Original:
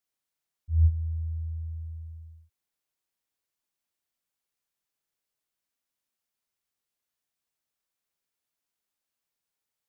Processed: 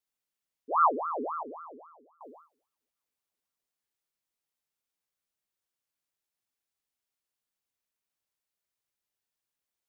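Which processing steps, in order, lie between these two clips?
1.43–2.21 s: expander -28 dBFS; two-slope reverb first 0.79 s, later 3 s, DRR 20 dB; ring modulator with a swept carrier 810 Hz, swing 60%, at 3.7 Hz

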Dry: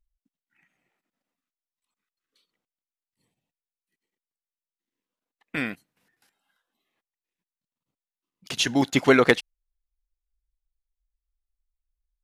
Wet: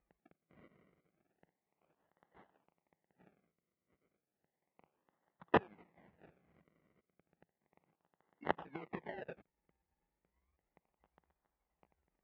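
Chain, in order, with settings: sawtooth pitch modulation +7.5 st, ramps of 709 ms; dynamic bell 460 Hz, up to +8 dB, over -36 dBFS, Q 3.6; compression 2.5:1, threshold -18 dBFS, peak gain reduction 6 dB; inverted gate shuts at -19 dBFS, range -34 dB; crackle 75 per s -62 dBFS; decimation with a swept rate 35×, swing 100% 0.33 Hz; cabinet simulation 100–2600 Hz, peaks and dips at 110 Hz -8 dB, 170 Hz +5 dB, 260 Hz -3 dB, 830 Hz +5 dB, 1.4 kHz -3 dB, 2 kHz +7 dB; trim +7 dB

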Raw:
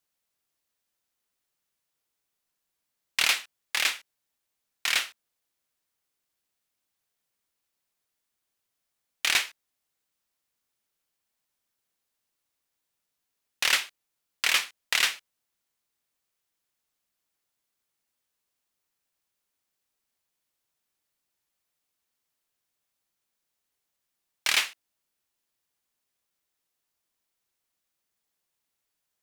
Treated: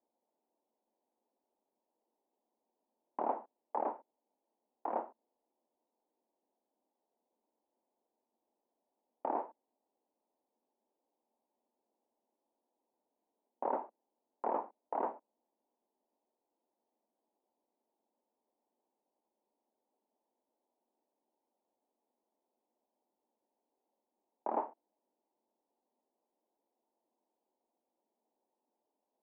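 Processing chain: Chebyshev band-pass 220–920 Hz, order 4; peak limiter -33 dBFS, peak gain reduction 5 dB; trim +10 dB

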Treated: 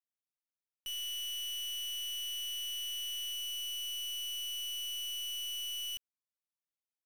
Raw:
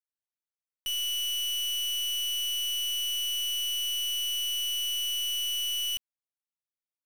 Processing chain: 0.88–3.33 s: small resonant body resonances 1.9/3.4 kHz, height 16 dB, ringing for 50 ms; trim -8.5 dB

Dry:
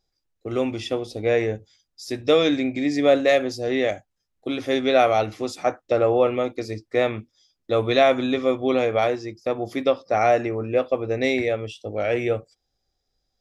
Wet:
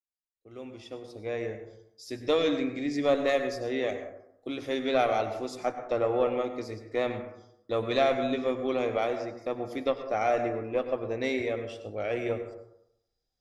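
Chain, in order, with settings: fade-in on the opening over 2.25 s; Chebyshev shaper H 2 -16 dB, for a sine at -5.5 dBFS; plate-style reverb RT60 0.79 s, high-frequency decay 0.35×, pre-delay 85 ms, DRR 8 dB; trim -8 dB

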